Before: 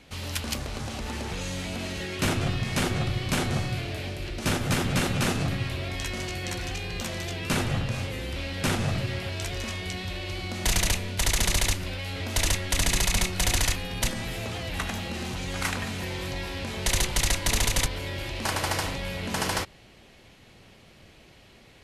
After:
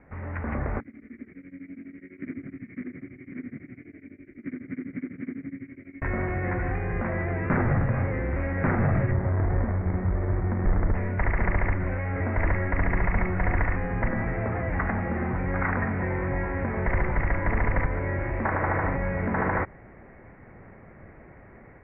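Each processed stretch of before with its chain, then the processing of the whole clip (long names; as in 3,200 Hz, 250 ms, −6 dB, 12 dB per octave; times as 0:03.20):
0:00.80–0:06.02: phase distortion by the signal itself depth 0.45 ms + formant filter i + tremolo along a rectified sine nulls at 12 Hz
0:09.11–0:10.95: low-shelf EQ 170 Hz +6 dB + windowed peak hold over 33 samples
whole clip: Butterworth low-pass 2,100 Hz 72 dB per octave; automatic gain control gain up to 6 dB; brickwall limiter −15 dBFS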